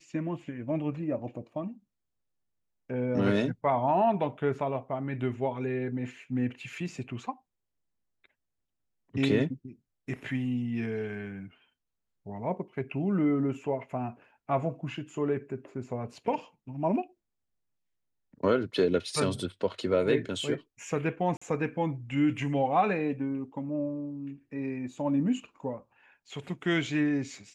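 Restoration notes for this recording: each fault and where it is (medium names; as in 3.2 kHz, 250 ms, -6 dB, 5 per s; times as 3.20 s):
21.37–21.41 s: dropout 45 ms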